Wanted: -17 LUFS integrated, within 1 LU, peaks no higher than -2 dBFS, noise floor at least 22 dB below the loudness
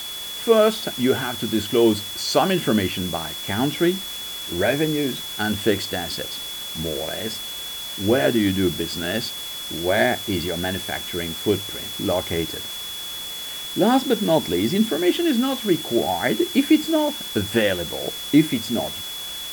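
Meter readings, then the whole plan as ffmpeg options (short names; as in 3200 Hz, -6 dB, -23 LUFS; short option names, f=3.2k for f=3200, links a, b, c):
steady tone 3400 Hz; tone level -31 dBFS; noise floor -32 dBFS; noise floor target -45 dBFS; loudness -22.5 LUFS; peak -3.0 dBFS; loudness target -17.0 LUFS
-> -af "bandreject=f=3.4k:w=30"
-af "afftdn=nr=13:nf=-32"
-af "volume=5.5dB,alimiter=limit=-2dB:level=0:latency=1"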